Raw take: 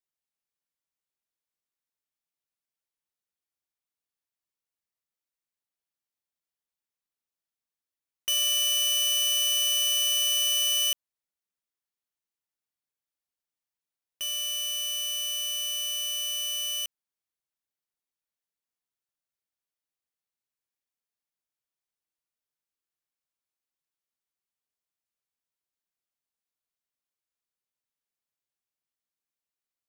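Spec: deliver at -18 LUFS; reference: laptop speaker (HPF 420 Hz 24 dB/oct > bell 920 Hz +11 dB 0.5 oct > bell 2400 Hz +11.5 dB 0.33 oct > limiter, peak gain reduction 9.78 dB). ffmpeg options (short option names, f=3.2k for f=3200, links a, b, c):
-af "highpass=f=420:w=0.5412,highpass=f=420:w=1.3066,equalizer=f=920:t=o:w=0.5:g=11,equalizer=f=2.4k:t=o:w=0.33:g=11.5,volume=11.5dB,alimiter=limit=-15.5dB:level=0:latency=1"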